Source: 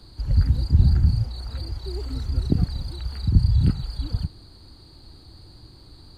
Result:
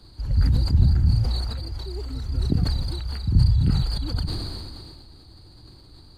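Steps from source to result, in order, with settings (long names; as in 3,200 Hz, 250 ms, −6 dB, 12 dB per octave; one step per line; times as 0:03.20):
level that may fall only so fast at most 27 dB per second
level −2.5 dB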